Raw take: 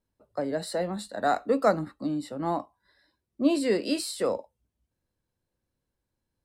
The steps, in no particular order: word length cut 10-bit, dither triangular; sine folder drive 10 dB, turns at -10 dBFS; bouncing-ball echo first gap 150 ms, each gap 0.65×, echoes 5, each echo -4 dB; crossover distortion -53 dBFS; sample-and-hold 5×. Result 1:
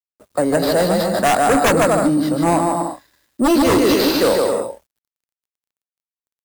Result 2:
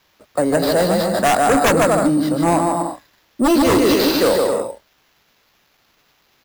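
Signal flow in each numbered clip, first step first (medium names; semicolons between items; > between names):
sample-and-hold > bouncing-ball echo > sine folder > word length cut > crossover distortion; bouncing-ball echo > sine folder > crossover distortion > word length cut > sample-and-hold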